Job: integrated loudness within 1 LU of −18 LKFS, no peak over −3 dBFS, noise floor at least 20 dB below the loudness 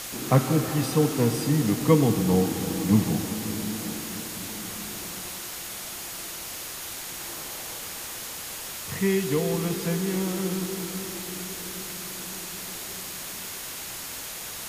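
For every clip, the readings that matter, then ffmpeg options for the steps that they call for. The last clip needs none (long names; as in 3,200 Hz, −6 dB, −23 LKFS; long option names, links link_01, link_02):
interfering tone 6,700 Hz; level of the tone −48 dBFS; background noise floor −37 dBFS; target noise floor −48 dBFS; integrated loudness −27.5 LKFS; sample peak −5.5 dBFS; target loudness −18.0 LKFS
→ -af "bandreject=frequency=6700:width=30"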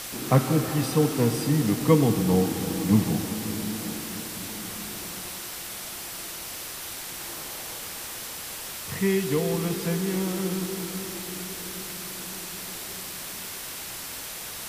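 interfering tone none found; background noise floor −37 dBFS; target noise floor −48 dBFS
→ -af "afftdn=noise_reduction=11:noise_floor=-37"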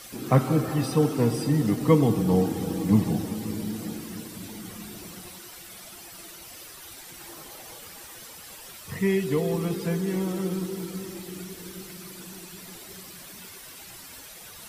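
background noise floor −45 dBFS; target noise floor −46 dBFS
→ -af "afftdn=noise_reduction=6:noise_floor=-45"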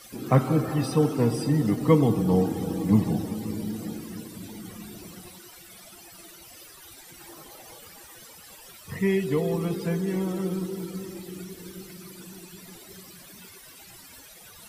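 background noise floor −49 dBFS; integrated loudness −25.5 LKFS; sample peak −6.0 dBFS; target loudness −18.0 LKFS
→ -af "volume=7.5dB,alimiter=limit=-3dB:level=0:latency=1"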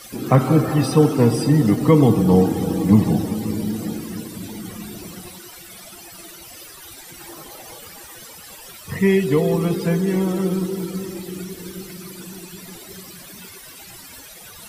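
integrated loudness −18.5 LKFS; sample peak −3.0 dBFS; background noise floor −41 dBFS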